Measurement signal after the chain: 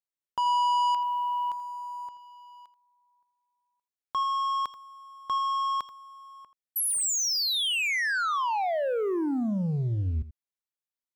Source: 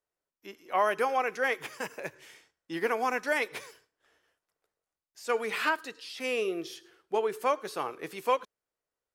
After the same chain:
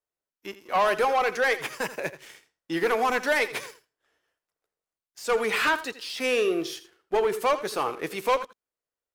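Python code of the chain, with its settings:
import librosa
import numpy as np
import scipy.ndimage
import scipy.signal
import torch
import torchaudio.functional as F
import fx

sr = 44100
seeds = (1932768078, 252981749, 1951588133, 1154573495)

y = fx.leveller(x, sr, passes=2)
y = y + 10.0 ** (-15.0 / 20.0) * np.pad(y, (int(83 * sr / 1000.0), 0))[:len(y)]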